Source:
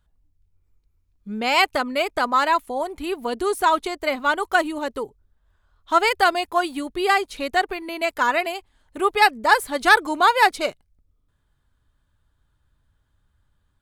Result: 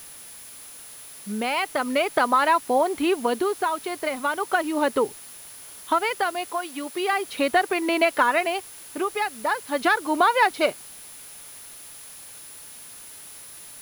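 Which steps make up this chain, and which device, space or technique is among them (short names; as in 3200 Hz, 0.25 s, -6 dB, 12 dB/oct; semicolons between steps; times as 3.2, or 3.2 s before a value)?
medium wave at night (BPF 160–3600 Hz; compressor, threshold -25 dBFS, peak gain reduction 15 dB; tremolo 0.38 Hz, depth 58%; whine 10000 Hz -52 dBFS; white noise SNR 20 dB); 6.52–7.13 HPF 420 Hz 6 dB/oct; gain +9 dB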